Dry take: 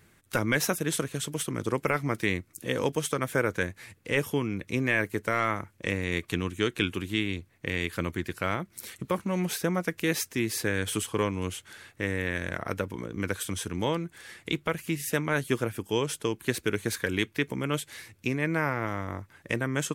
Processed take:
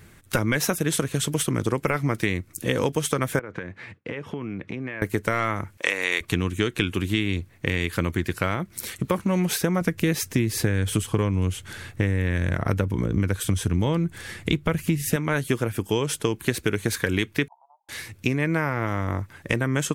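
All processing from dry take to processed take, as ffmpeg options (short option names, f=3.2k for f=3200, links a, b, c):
-filter_complex "[0:a]asettb=1/sr,asplit=3[a][b][c];[a]atrim=end=3.394[d];[b]atrim=start=3.39:end=5.02,asetpts=PTS-STARTPTS,afade=t=in:d=0.004:c=qsin,afade=t=out:st=1.626:d=0.004:c=qsin,agate=range=-33dB:threshold=-55dB:ratio=3:release=100:detection=peak,acompressor=threshold=-35dB:ratio=16:attack=3.2:release=140:knee=1:detection=peak,highpass=130,lowpass=2.6k[e];[c]atrim=start=5.016[f];[d][e]acrossfade=d=0.004:c1=hsin:c2=qsin[g];[g][f]acrossfade=d=0.004:c1=qsin:c2=hsin,asettb=1/sr,asplit=3[h][i][j];[h]atrim=end=5.774[k];[i]atrim=start=5.77:end=6.21,asetpts=PTS-STARTPTS,afade=t=in:d=0.004:c=qsin,afade=t=out:st=0.436:d=0.004:c=qsin,highpass=670,acontrast=48[l];[j]atrim=start=6.206[m];[k][l]acrossfade=d=0.004:c1=hsin:c2=qsin[n];[n][m]acrossfade=d=0.004:c1=qsin:c2=hsin,asettb=1/sr,asplit=3[o][p][q];[o]atrim=end=9.814[r];[p]atrim=start=9.81:end=15.16,asetpts=PTS-STARTPTS,afade=t=in:d=0.004:c=qsin,afade=t=out:st=5.346:d=0.004:c=qsin,lowshelf=f=220:g=10.5,deesser=0.3[s];[q]atrim=start=15.156[t];[r][s]acrossfade=d=0.004:c1=hsin:c2=qsin[u];[u][t]acrossfade=d=0.004:c1=qsin:c2=hsin,asettb=1/sr,asplit=3[v][w][x];[v]atrim=end=17.484[y];[w]atrim=start=17.48:end=17.89,asetpts=PTS-STARTPTS,afade=t=in:d=0.004:c=qsin,afade=t=out:st=0.406:d=0.004:c=qsin,acompressor=threshold=-42dB:ratio=10:attack=3.2:release=140:knee=1:detection=peak,asuperpass=centerf=820:order=8:qfactor=2.9[z];[x]atrim=start=17.886[aa];[y][z]acrossfade=d=0.004:c1=hsin:c2=qsin[ab];[ab][aa]acrossfade=d=0.004:c1=qsin:c2=hsin,lowshelf=f=130:g=7,acompressor=threshold=-27dB:ratio=6,volume=8dB"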